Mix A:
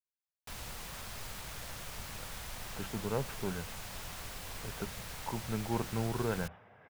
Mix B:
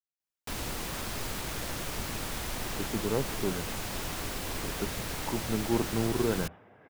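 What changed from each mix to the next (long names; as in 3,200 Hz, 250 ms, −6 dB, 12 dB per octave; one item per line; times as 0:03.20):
background +7.5 dB
master: add parametric band 310 Hz +10.5 dB 1 octave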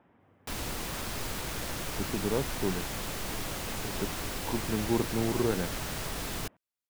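speech: entry −0.80 s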